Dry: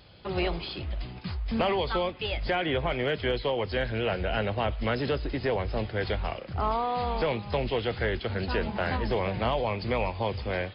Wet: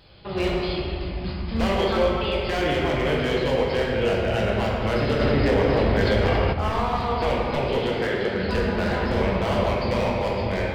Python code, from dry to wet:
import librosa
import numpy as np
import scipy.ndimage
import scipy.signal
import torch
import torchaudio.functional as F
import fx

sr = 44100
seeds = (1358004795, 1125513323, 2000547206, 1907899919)

y = fx.highpass(x, sr, hz=120.0, slope=24, at=(7.13, 8.35))
y = 10.0 ** (-21.5 / 20.0) * (np.abs((y / 10.0 ** (-21.5 / 20.0) + 3.0) % 4.0 - 2.0) - 1.0)
y = fx.room_shoebox(y, sr, seeds[0], volume_m3=140.0, walls='hard', distance_m=0.67)
y = fx.env_flatten(y, sr, amount_pct=70, at=(5.19, 6.52), fade=0.02)